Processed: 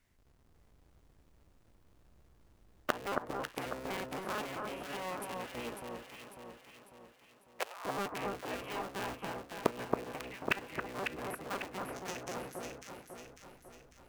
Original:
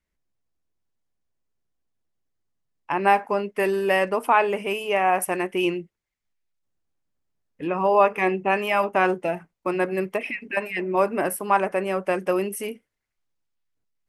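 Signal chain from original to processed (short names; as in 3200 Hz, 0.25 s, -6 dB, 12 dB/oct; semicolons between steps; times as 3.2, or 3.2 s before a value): cycle switcher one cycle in 3, inverted; flipped gate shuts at -25 dBFS, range -29 dB; 5.75–7.85 HPF 620 Hz 24 dB/oct; 11.92–12.35 bell 6200 Hz +14 dB 0.54 oct; echo with dull and thin repeats by turns 0.274 s, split 1500 Hz, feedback 70%, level -2 dB; gain +8.5 dB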